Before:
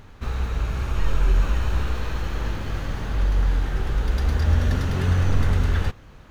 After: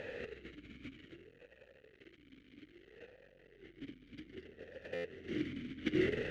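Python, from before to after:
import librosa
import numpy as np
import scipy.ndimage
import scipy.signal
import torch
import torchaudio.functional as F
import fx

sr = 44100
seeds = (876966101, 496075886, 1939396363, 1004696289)

p1 = np.minimum(x, 2.0 * 10.0 ** (-19.0 / 20.0) - x)
p2 = fx.doppler_pass(p1, sr, speed_mps=8, closest_m=6.0, pass_at_s=2.12)
p3 = p2 + fx.echo_feedback(p2, sr, ms=561, feedback_pct=18, wet_db=-5.0, dry=0)
p4 = 10.0 ** (-27.5 / 20.0) * np.tanh(p3 / 10.0 ** (-27.5 / 20.0))
p5 = fx.over_compress(p4, sr, threshold_db=-42.0, ratio=-0.5)
p6 = fx.buffer_glitch(p5, sr, at_s=(4.94,), block=512, repeats=8)
p7 = fx.vowel_sweep(p6, sr, vowels='e-i', hz=0.62)
y = F.gain(torch.from_numpy(p7), 17.0).numpy()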